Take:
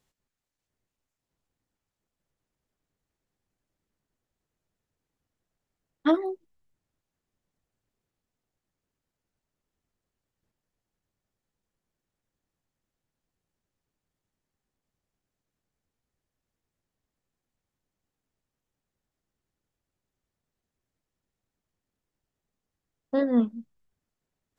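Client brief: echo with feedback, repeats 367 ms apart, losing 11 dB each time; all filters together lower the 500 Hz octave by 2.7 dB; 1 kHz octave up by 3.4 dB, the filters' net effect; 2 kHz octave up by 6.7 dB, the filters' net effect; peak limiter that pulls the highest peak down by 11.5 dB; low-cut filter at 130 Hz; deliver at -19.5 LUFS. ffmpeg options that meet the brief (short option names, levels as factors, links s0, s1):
-af "highpass=130,equalizer=f=500:t=o:g=-5,equalizer=f=1000:t=o:g=3.5,equalizer=f=2000:t=o:g=7.5,alimiter=limit=0.0841:level=0:latency=1,aecho=1:1:367|734|1101:0.282|0.0789|0.0221,volume=6.31"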